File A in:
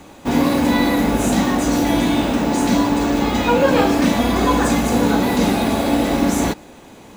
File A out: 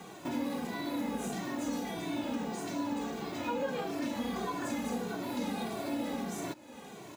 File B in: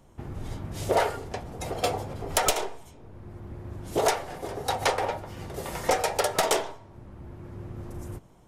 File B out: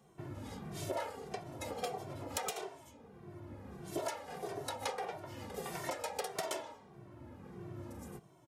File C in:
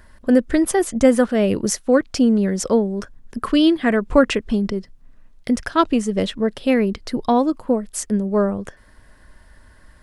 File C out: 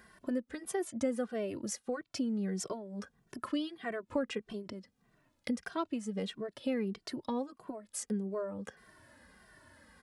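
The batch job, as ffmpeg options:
-filter_complex "[0:a]highpass=130,acompressor=threshold=0.0224:ratio=3,asplit=2[s0][s1];[s1]adelay=2.1,afreqshift=-1.6[s2];[s0][s2]amix=inputs=2:normalize=1,volume=0.794"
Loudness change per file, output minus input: -19.0 LU, -13.5 LU, -18.5 LU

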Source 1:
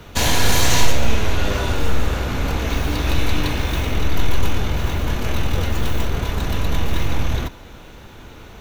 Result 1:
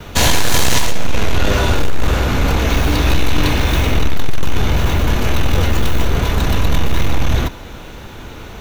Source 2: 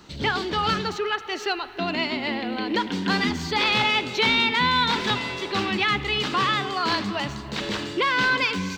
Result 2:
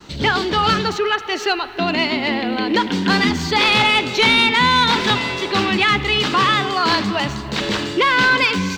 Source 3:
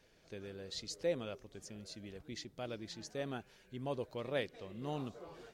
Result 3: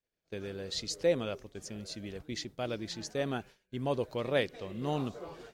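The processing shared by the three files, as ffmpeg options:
-af "aeval=exprs='0.891*(cos(1*acos(clip(val(0)/0.891,-1,1)))-cos(1*PI/2))+0.447*(cos(5*acos(clip(val(0)/0.891,-1,1)))-cos(5*PI/2))':c=same,agate=range=0.0224:threshold=0.0112:ratio=3:detection=peak,volume=0.668"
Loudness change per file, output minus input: +4.5 LU, +7.0 LU, +7.5 LU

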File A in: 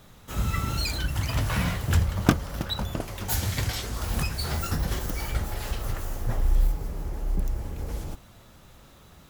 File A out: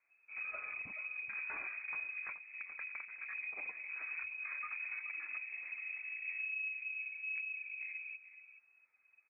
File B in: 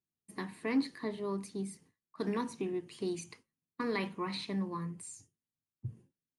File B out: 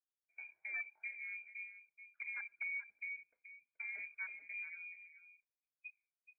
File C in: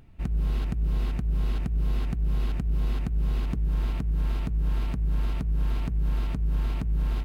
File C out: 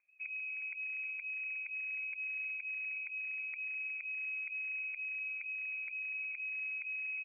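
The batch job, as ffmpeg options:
-af "afwtdn=0.0224,highpass=f=47:p=1,equalizer=f=320:t=o:w=0.7:g=5,acompressor=threshold=0.0398:ratio=5,aecho=1:1:428:0.237,flanger=delay=1.9:depth=2.5:regen=69:speed=0.44:shape=triangular,aeval=exprs='0.0335*(abs(mod(val(0)/0.0335+3,4)-2)-1)':c=same,lowpass=f=2200:t=q:w=0.5098,lowpass=f=2200:t=q:w=0.6013,lowpass=f=2200:t=q:w=0.9,lowpass=f=2200:t=q:w=2.563,afreqshift=-2600,volume=0.501"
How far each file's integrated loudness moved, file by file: -11.5 LU, -7.0 LU, -8.5 LU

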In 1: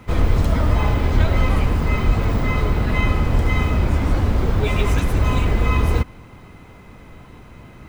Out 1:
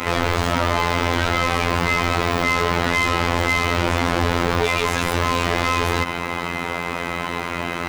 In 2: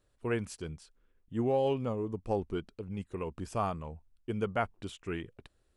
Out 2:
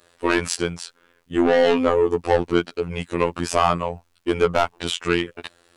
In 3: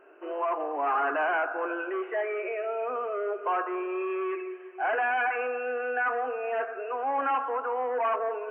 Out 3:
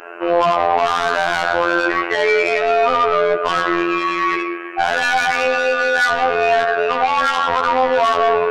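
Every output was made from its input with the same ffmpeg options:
-filter_complex "[0:a]asplit=2[s0][s1];[s1]highpass=f=720:p=1,volume=39.8,asoftclip=type=tanh:threshold=0.631[s2];[s0][s2]amix=inputs=2:normalize=0,lowpass=f=1500:p=1,volume=0.501,afftfilt=real='hypot(re,im)*cos(PI*b)':imag='0':win_size=2048:overlap=0.75,highshelf=f=2600:g=11,alimiter=level_in=1.33:limit=0.891:release=50:level=0:latency=1,volume=0.891"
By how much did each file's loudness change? -0.5 LU, +13.5 LU, +13.0 LU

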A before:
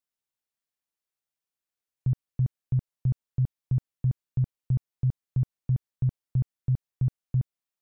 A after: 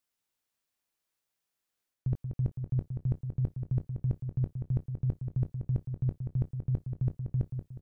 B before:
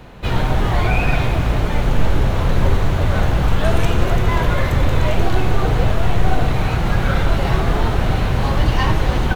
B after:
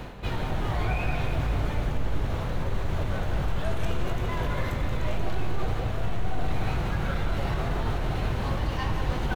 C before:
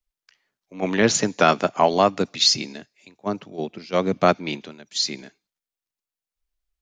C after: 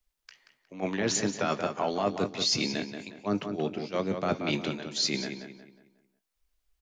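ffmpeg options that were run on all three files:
-filter_complex "[0:a]alimiter=limit=0.398:level=0:latency=1,areverse,acompressor=threshold=0.0251:ratio=5,areverse,asplit=2[s0][s1];[s1]adelay=20,volume=0.251[s2];[s0][s2]amix=inputs=2:normalize=0,asplit=2[s3][s4];[s4]adelay=181,lowpass=f=3400:p=1,volume=0.447,asplit=2[s5][s6];[s6]adelay=181,lowpass=f=3400:p=1,volume=0.39,asplit=2[s7][s8];[s8]adelay=181,lowpass=f=3400:p=1,volume=0.39,asplit=2[s9][s10];[s10]adelay=181,lowpass=f=3400:p=1,volume=0.39,asplit=2[s11][s12];[s12]adelay=181,lowpass=f=3400:p=1,volume=0.39[s13];[s3][s5][s7][s9][s11][s13]amix=inputs=6:normalize=0,volume=1.78"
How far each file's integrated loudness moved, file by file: -4.0 LU, -11.5 LU, -8.5 LU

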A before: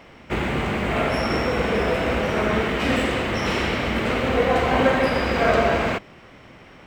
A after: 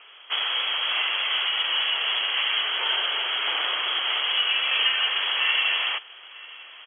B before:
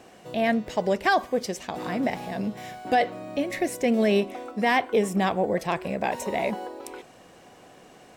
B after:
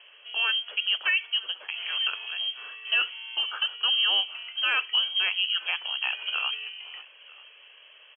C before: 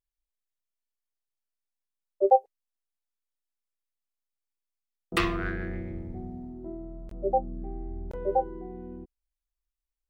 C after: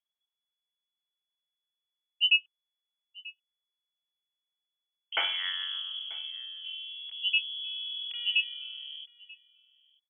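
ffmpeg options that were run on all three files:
-filter_complex "[0:a]aecho=1:1:937:0.0668,lowpass=f=2900:t=q:w=0.5098,lowpass=f=2900:t=q:w=0.6013,lowpass=f=2900:t=q:w=0.9,lowpass=f=2900:t=q:w=2.563,afreqshift=-3400,highpass=f=350:w=0.5412,highpass=f=350:w=1.3066,asplit=2[s0][s1];[s1]alimiter=limit=0.2:level=0:latency=1:release=365,volume=1.12[s2];[s0][s2]amix=inputs=2:normalize=0,volume=0.376"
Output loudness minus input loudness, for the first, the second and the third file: -0.5 LU, +0.5 LU, +0.5 LU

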